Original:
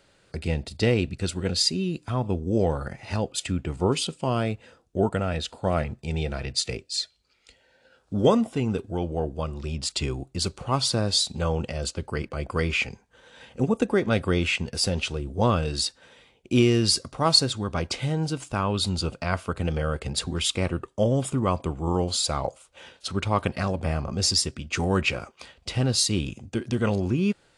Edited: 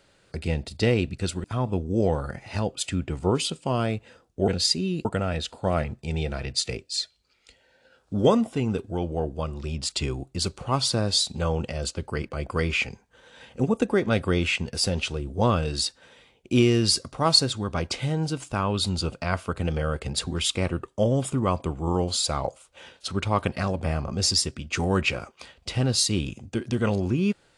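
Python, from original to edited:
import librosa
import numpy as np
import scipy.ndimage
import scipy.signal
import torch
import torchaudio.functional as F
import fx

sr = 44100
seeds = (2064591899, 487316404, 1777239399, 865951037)

y = fx.edit(x, sr, fx.move(start_s=1.44, length_s=0.57, to_s=5.05), tone=tone)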